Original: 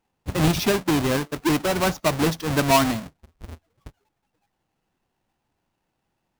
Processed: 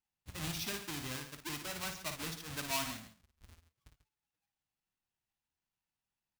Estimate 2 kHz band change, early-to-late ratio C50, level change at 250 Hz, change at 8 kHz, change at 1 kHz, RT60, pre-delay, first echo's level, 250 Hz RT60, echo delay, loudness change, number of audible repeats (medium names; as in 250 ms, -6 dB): -15.0 dB, no reverb, -23.5 dB, -11.0 dB, -20.0 dB, no reverb, no reverb, -7.0 dB, no reverb, 55 ms, -17.5 dB, 2